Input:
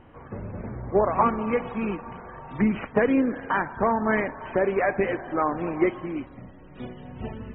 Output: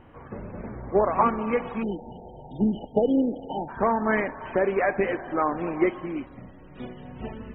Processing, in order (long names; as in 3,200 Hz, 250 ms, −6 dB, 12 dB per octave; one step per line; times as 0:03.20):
time-frequency box erased 0:01.83–0:03.69, 910–2,900 Hz
dynamic equaliser 100 Hz, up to −7 dB, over −46 dBFS, Q 1.6